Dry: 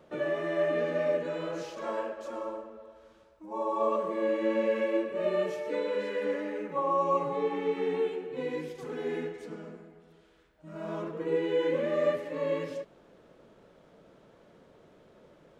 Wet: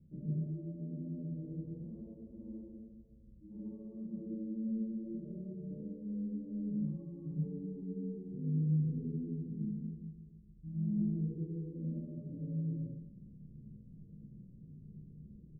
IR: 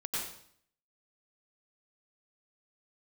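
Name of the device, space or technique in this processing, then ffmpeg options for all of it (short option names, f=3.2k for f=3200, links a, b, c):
club heard from the street: -filter_complex "[0:a]aecho=1:1:32|47:0.531|0.335,alimiter=level_in=1.5dB:limit=-24dB:level=0:latency=1:release=214,volume=-1.5dB,lowpass=f=180:w=0.5412,lowpass=f=180:w=1.3066[a];[1:a]atrim=start_sample=2205[b];[a][b]afir=irnorm=-1:irlink=0,volume=9.5dB"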